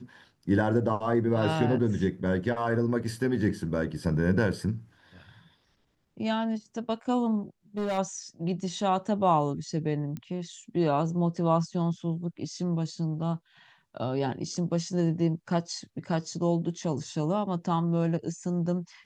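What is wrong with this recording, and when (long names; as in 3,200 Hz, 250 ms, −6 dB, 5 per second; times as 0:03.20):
0:07.77–0:07.99: clipping −25.5 dBFS
0:10.17: click −25 dBFS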